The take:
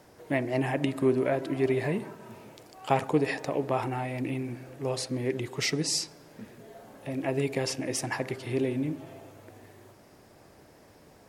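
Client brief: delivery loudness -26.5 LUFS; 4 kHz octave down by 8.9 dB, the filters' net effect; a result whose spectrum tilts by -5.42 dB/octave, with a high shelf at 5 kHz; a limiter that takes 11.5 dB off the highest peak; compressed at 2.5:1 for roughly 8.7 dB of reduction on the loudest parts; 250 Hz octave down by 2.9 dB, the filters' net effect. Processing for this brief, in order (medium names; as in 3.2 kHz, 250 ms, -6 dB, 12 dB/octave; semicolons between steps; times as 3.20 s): peaking EQ 250 Hz -3.5 dB; peaking EQ 4 kHz -8 dB; treble shelf 5 kHz -7.5 dB; compression 2.5:1, threshold -34 dBFS; trim +13.5 dB; peak limiter -15.5 dBFS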